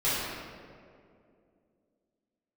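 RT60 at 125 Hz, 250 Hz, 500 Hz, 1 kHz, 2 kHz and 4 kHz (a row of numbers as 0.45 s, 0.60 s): 2.5 s, 3.1 s, 2.8 s, 2.0 s, 1.6 s, 1.2 s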